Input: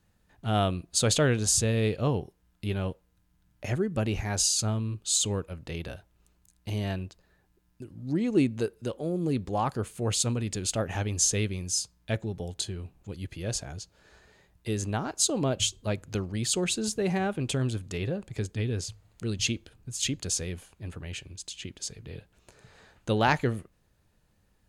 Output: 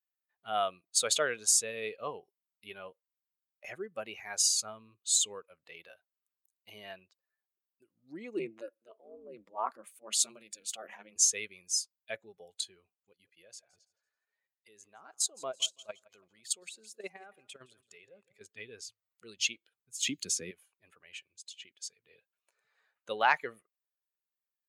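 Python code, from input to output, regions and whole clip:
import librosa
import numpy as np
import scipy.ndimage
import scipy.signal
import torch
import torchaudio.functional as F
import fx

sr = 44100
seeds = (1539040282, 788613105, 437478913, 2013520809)

y = fx.chain(x, sr, fx.transient(attack_db=-4, sustain_db=7),
    fx.ring_mod(carrier_hz=110.0),
    fx.band_widen(depth_pct=70), at=(8.39, 11.16))
y = fx.chain(y, sr, fx.level_steps(step_db=13),
    fx.echo_feedback(ms=166, feedback_pct=42, wet_db=-14.5), at=(12.94, 18.41))
y = fx.chain(y, sr, fx.low_shelf_res(hz=410.0, db=9.5, q=1.5),
    fx.notch(hz=940.0, q=7.8),
    fx.band_squash(depth_pct=70), at=(20.07, 20.51))
y = fx.bin_expand(y, sr, power=1.5)
y = scipy.signal.sosfilt(scipy.signal.butter(2, 700.0, 'highpass', fs=sr, output='sos'), y)
y = fx.peak_eq(y, sr, hz=4200.0, db=-2.0, octaves=0.77)
y = y * librosa.db_to_amplitude(2.0)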